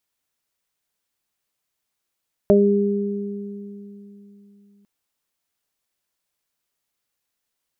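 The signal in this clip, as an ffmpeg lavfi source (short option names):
-f lavfi -i "aevalsrc='0.188*pow(10,-3*t/3.61)*sin(2*PI*202*t)+0.251*pow(10,-3*t/2.49)*sin(2*PI*404*t)+0.251*pow(10,-3*t/0.26)*sin(2*PI*606*t)':d=2.35:s=44100"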